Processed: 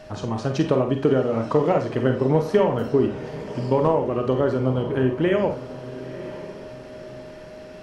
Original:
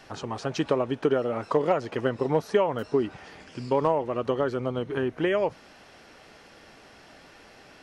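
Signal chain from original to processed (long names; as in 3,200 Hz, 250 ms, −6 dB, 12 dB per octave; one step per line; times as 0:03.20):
on a send: feedback delay with all-pass diffusion 1,006 ms, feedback 42%, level −14.5 dB
on the sum: steady tone 620 Hz −44 dBFS
low-shelf EQ 280 Hz +11.5 dB
four-comb reverb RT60 0.34 s, combs from 31 ms, DRR 5 dB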